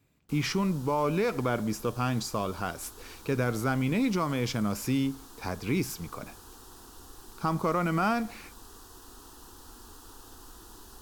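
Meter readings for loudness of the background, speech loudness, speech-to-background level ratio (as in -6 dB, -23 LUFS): -49.5 LUFS, -30.0 LUFS, 19.5 dB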